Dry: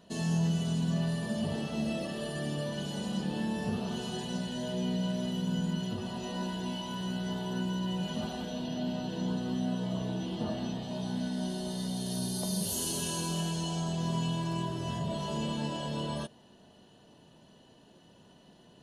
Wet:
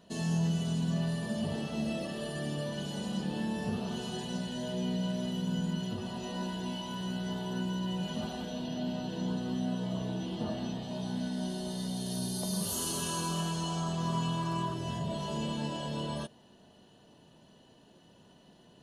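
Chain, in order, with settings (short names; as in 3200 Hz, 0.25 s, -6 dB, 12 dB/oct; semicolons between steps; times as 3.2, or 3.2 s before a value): 12.53–14.74 bell 1200 Hz +12.5 dB 0.45 oct; gain -1 dB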